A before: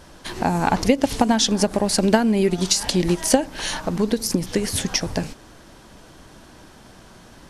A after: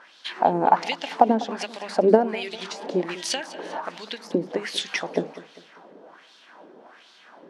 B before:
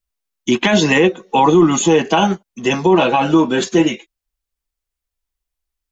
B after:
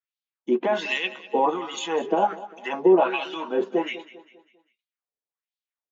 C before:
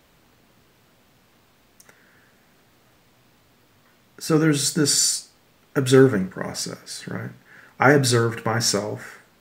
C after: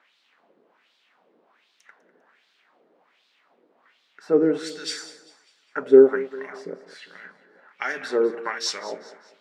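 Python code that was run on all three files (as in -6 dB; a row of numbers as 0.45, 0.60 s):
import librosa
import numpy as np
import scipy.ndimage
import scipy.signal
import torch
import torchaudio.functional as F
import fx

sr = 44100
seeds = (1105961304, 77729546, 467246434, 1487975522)

y = fx.high_shelf(x, sr, hz=5700.0, db=-8.0)
y = fx.hum_notches(y, sr, base_hz=50, count=4)
y = fx.wah_lfo(y, sr, hz=1.3, low_hz=410.0, high_hz=3900.0, q=2.3)
y = fx.brickwall_highpass(y, sr, low_hz=150.0)
y = fx.echo_feedback(y, sr, ms=199, feedback_pct=42, wet_db=-17)
y = y * 10.0 ** (-26 / 20.0) / np.sqrt(np.mean(np.square(y)))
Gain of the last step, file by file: +7.0, -0.5, +4.5 dB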